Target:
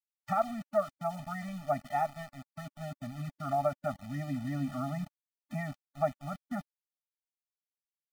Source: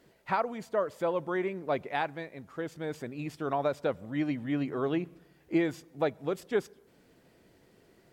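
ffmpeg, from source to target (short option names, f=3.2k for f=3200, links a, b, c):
-af "lowpass=f=1.7k:w=0.5412,lowpass=f=1.7k:w=1.3066,aeval=exprs='val(0)*gte(abs(val(0)),0.0075)':c=same,afftfilt=real='re*eq(mod(floor(b*sr/1024/290),2),0)':imag='im*eq(mod(floor(b*sr/1024/290),2),0)':win_size=1024:overlap=0.75,volume=2.5dB"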